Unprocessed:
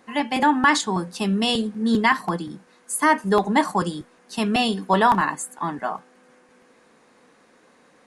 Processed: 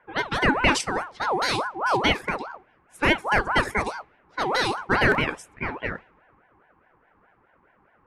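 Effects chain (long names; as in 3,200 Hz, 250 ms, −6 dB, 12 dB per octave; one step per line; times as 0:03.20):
low-pass that shuts in the quiet parts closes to 780 Hz, open at −17.5 dBFS
ring modulator whose carrier an LFO sweeps 910 Hz, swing 40%, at 4.8 Hz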